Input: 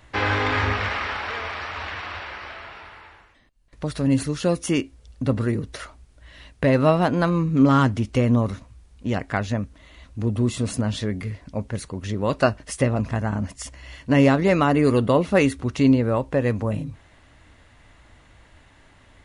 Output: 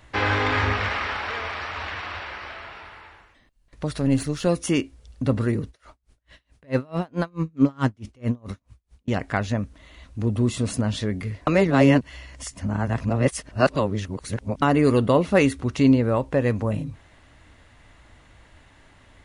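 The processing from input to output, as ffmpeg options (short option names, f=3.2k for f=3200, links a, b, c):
-filter_complex "[0:a]asettb=1/sr,asplit=3[a][b][c];[a]atrim=end=3.984[d];[b]atrim=start=3.98:end=4.47,asetpts=PTS-STARTPTS,afade=t=in:d=0.004:c=qsin,afade=t=out:st=0.486:d=0.004:c=qsin,aeval=exprs='if(lt(val(0),0),0.708*val(0),val(0))':c=same[e];[c]atrim=start=4.466[f];[d][e]acrossfade=d=0.004:c1=hsin:c2=qsin[g];[g][f]acrossfade=d=0.004:c1=qsin:c2=hsin,asettb=1/sr,asplit=3[h][i][j];[h]atrim=end=5.684[k];[i]atrim=start=5.68:end=9.08,asetpts=PTS-STARTPTS,afade=t=in:d=0.004:c=qsin,afade=t=out:st=3.396:d=0.004:c=qsin,aeval=exprs='val(0)*pow(10,-35*(0.5-0.5*cos(2*PI*4.6*n/s))/20)':c=same[l];[j]atrim=start=9.076[m];[k][l]acrossfade=d=0.004:c1=hsin:c2=qsin[n];[n][m]acrossfade=d=0.004:c1=qsin:c2=hsin,asplit=3[o][p][q];[o]atrim=end=11.472[r];[p]atrim=start=11.468:end=14.622,asetpts=PTS-STARTPTS,areverse[s];[q]atrim=start=14.618[t];[r][s]acrossfade=d=0.004:c1=hsin:c2=hsin[u];[u][t]acrossfade=d=0.004:c1=hsin:c2=hsin"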